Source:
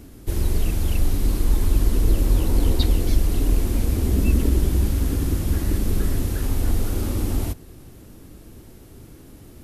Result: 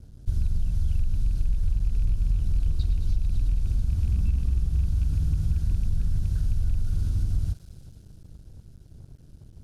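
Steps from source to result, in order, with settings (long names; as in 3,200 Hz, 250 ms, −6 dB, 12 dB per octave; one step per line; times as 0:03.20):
loose part that buzzes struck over −15 dBFS, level −20 dBFS
elliptic band-stop filter 680–1,500 Hz
high-frequency loss of the air 270 metres
in parallel at −10.5 dB: hard clipping −20 dBFS, distortion −8 dB
on the sum: drawn EQ curve 160 Hz 0 dB, 260 Hz −19 dB, 570 Hz −24 dB, 1,200 Hz +5 dB, 1,800 Hz −22 dB, 9,400 Hz +14 dB, 13,000 Hz +4 dB
on a send: feedback echo with a high-pass in the loop 109 ms, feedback 83%, high-pass 670 Hz, level −12.5 dB
on the sum: downward compressor, threshold −19 dBFS, peak gain reduction 8.5 dB
dead-zone distortion −50.5 dBFS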